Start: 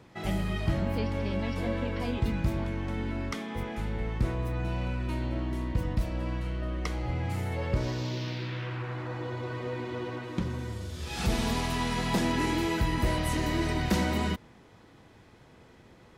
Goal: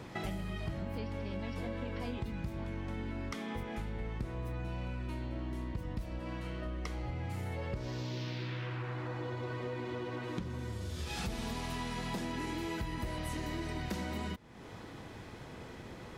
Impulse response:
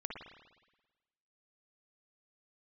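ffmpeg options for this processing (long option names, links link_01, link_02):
-filter_complex "[0:a]asettb=1/sr,asplit=3[link_01][link_02][link_03];[link_01]atrim=end=6.194[link_04];[link_02]atrim=start=6.19:end=6.66,asetpts=PTS-STARTPTS,afade=type=in:duration=0.004:curve=qsin,afade=type=out:start_time=0.466:duration=0.004:curve=qsin,lowshelf=frequency=98:gain=-10.5[link_05];[link_03]atrim=start=6.656[link_06];[link_04][link_05]acrossfade=duration=0.004:curve1=hsin:curve2=qsin[link_07];[link_07][link_06]acrossfade=duration=0.004:curve1=qsin:curve2=hsin,acompressor=threshold=-45dB:ratio=5,volume=7.5dB"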